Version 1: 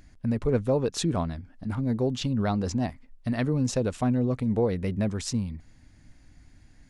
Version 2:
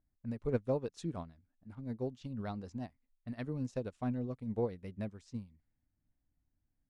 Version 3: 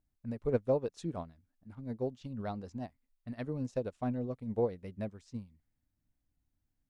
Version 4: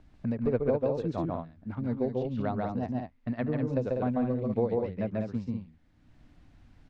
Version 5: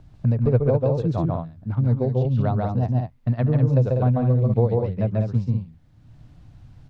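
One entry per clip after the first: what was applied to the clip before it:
low-pass opened by the level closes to 1000 Hz, open at -24.5 dBFS; upward expander 2.5:1, over -34 dBFS; gain -6.5 dB
dynamic EQ 590 Hz, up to +5 dB, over -48 dBFS, Q 1.1
LPF 3200 Hz 12 dB/oct; loudspeakers at several distances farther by 48 m -2 dB, 67 m -6 dB; three-band squash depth 70%; gain +4 dB
graphic EQ 125/250/2000 Hz +12/-6/-6 dB; gain +6.5 dB

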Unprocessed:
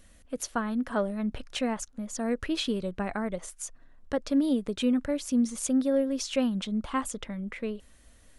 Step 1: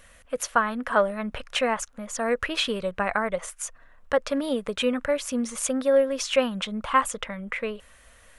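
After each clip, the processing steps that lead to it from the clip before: EQ curve 150 Hz 0 dB, 330 Hz -5 dB, 500 Hz +8 dB, 790 Hz +7 dB, 1100 Hz +12 dB, 2600 Hz +10 dB, 4400 Hz +3 dB, 9400 Hz +5 dB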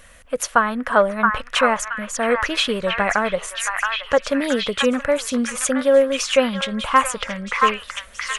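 delay with a stepping band-pass 0.673 s, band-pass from 1400 Hz, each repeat 0.7 oct, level 0 dB; gain +5.5 dB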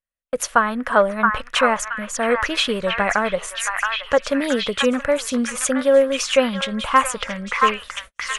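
gate -35 dBFS, range -47 dB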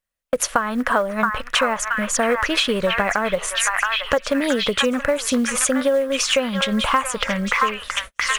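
compressor 8:1, threshold -23 dBFS, peak gain reduction 13.5 dB; short-mantissa float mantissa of 4-bit; gain +7 dB

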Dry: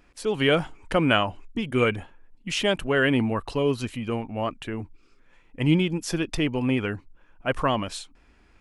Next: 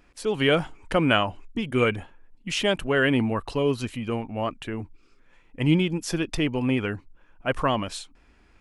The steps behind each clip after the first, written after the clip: nothing audible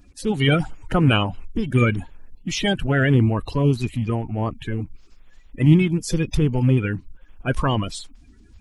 bin magnitudes rounded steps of 30 dB; tone controls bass +11 dB, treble +4 dB

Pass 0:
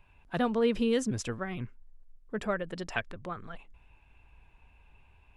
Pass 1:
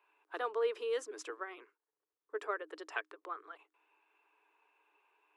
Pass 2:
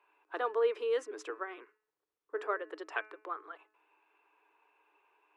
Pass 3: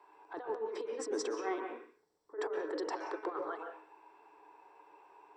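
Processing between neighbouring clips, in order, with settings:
rippled Chebyshev high-pass 300 Hz, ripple 9 dB; gain -1 dB
high shelf 4000 Hz -10.5 dB; de-hum 214.9 Hz, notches 13; gain +4 dB
negative-ratio compressor -44 dBFS, ratio -1; reverb RT60 0.45 s, pre-delay 0.116 s, DRR 2.5 dB; gain -4.5 dB

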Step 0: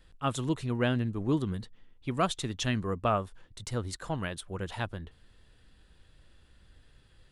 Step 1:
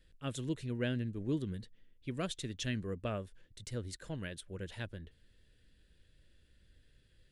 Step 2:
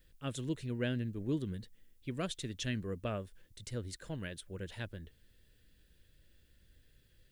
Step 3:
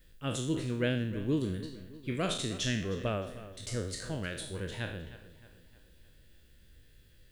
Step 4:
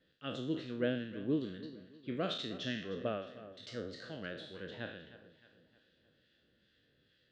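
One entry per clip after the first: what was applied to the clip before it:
band shelf 960 Hz -11 dB 1.1 oct; gain -6.5 dB
added noise blue -79 dBFS
spectral trails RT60 0.58 s; darkening echo 0.309 s, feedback 49%, low-pass 4300 Hz, level -15 dB; gain +3.5 dB
speaker cabinet 210–4200 Hz, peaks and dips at 380 Hz -3 dB, 950 Hz -9 dB, 2300 Hz -8 dB; harmonic tremolo 2.3 Hz, depth 50%, crossover 1300 Hz

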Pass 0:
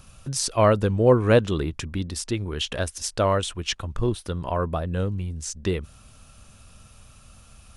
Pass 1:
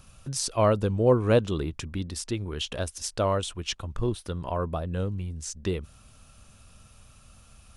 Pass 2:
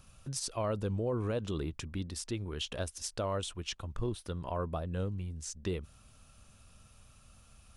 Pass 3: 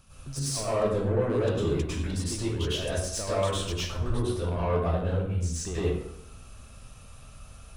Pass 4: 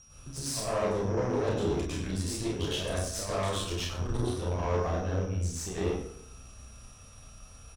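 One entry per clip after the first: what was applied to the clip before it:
dynamic EQ 1800 Hz, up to -5 dB, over -42 dBFS, Q 2.1; gain -3.5 dB
limiter -19.5 dBFS, peak gain reduction 10 dB; gain -5.5 dB
soft clip -31.5 dBFS, distortion -13 dB; plate-style reverb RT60 0.82 s, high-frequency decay 0.6×, pre-delay 90 ms, DRR -10 dB
whine 5700 Hz -49 dBFS; tube stage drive 24 dB, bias 0.75; early reflections 32 ms -4 dB, 47 ms -8.5 dB

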